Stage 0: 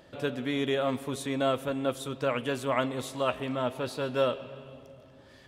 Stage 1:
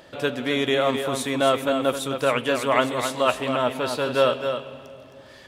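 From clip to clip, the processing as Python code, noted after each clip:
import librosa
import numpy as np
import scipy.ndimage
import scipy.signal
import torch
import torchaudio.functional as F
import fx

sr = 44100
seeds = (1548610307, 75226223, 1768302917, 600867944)

y = fx.low_shelf(x, sr, hz=350.0, db=-7.5)
y = y + 10.0 ** (-7.5 / 20.0) * np.pad(y, (int(264 * sr / 1000.0), 0))[:len(y)]
y = y * 10.0 ** (9.0 / 20.0)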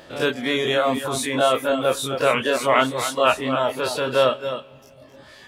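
y = fx.spec_dilate(x, sr, span_ms=60)
y = fx.room_flutter(y, sr, wall_m=6.5, rt60_s=0.2)
y = fx.dereverb_blind(y, sr, rt60_s=1.0)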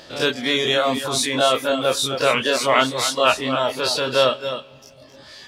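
y = fx.peak_eq(x, sr, hz=4900.0, db=11.0, octaves=1.1)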